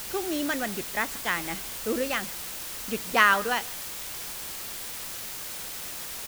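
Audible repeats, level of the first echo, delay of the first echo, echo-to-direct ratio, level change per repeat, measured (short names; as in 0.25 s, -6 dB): 1, -22.5 dB, 0.154 s, -22.5 dB, no steady repeat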